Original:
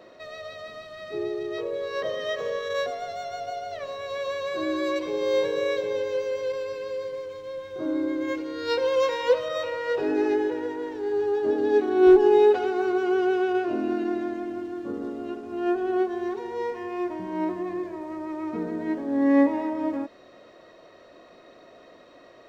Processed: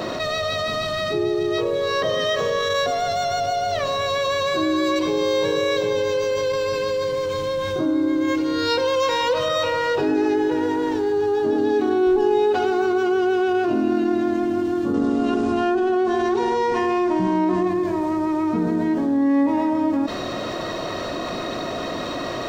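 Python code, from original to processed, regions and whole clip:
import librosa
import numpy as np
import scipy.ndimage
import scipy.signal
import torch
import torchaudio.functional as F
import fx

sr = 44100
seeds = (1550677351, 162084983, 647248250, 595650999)

y = fx.chain(x, sr, fx.hum_notches(base_hz=50, count=10),
    fx.resample_bad(factor=2, down='none', up='filtered'),
    fx.env_flatten(amount_pct=50), at=(14.94, 17.68))
y = fx.graphic_eq(y, sr, hz=(125, 500, 2000), db=(3, -8, -6))
y = fx.env_flatten(y, sr, amount_pct=70)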